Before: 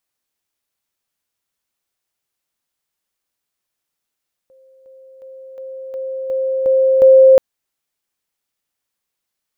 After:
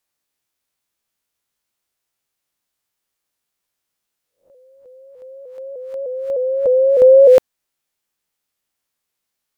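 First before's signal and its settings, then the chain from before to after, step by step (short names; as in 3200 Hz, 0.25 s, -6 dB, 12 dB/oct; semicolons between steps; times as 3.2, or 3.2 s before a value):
level ladder 528 Hz -46 dBFS, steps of 6 dB, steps 8, 0.36 s 0.00 s
spectral swells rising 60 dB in 0.33 s; shaped vibrato saw up 3.3 Hz, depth 100 cents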